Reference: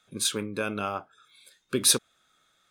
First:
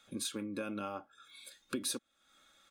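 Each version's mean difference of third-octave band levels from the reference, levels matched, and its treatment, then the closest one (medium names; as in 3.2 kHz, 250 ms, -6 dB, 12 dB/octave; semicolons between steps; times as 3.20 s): 4.5 dB: dynamic bell 290 Hz, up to +6 dB, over -41 dBFS, Q 0.88; comb 3.6 ms, depth 55%; compression 3:1, threshold -42 dBFS, peak gain reduction 19.5 dB; trim +1 dB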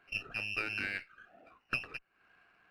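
12.0 dB: compression 8:1, threshold -36 dBFS, peak gain reduction 19.5 dB; frequency inversion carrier 2.9 kHz; sliding maximum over 3 samples; trim +4 dB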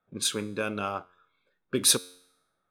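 2.5 dB: level-controlled noise filter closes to 990 Hz, open at -25.5 dBFS; feedback comb 90 Hz, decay 0.79 s, harmonics all, mix 40%; in parallel at -6.5 dB: hysteresis with a dead band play -47.5 dBFS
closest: third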